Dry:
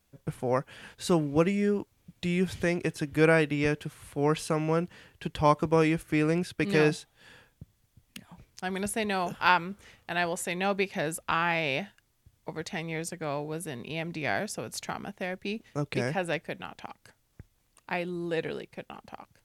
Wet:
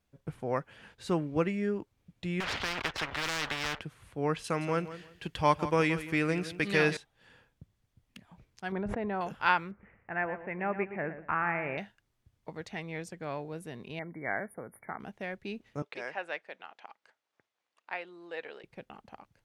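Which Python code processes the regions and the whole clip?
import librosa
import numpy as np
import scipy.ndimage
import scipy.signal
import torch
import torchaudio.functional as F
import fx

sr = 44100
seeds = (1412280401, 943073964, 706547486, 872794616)

y = fx.chain(x, sr, fx.air_absorb(metres=240.0),
    fx.leveller(passes=2),
    fx.spectral_comp(ratio=10.0), at=(2.4, 3.81))
y = fx.chain(y, sr, fx.high_shelf(hz=2000.0, db=9.5),
    fx.echo_feedback(ms=169, feedback_pct=22, wet_db=-13.5), at=(4.44, 6.97))
y = fx.chain(y, sr, fx.lowpass(hz=1200.0, slope=12),
    fx.env_flatten(amount_pct=100), at=(8.72, 9.21))
y = fx.chain(y, sr, fx.steep_lowpass(hz=2300.0, slope=48),
    fx.echo_feedback(ms=118, feedback_pct=31, wet_db=-11.0), at=(9.71, 11.78))
y = fx.chain(y, sr, fx.brickwall_bandstop(low_hz=2300.0, high_hz=9200.0),
    fx.low_shelf(hz=110.0, db=-10.0), at=(13.99, 15.0))
y = fx.chain(y, sr, fx.highpass(hz=590.0, slope=12),
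    fx.air_absorb(metres=70.0), at=(15.82, 18.64))
y = fx.lowpass(y, sr, hz=3500.0, slope=6)
y = fx.dynamic_eq(y, sr, hz=1700.0, q=1.0, threshold_db=-39.0, ratio=4.0, max_db=4)
y = y * 10.0 ** (-5.0 / 20.0)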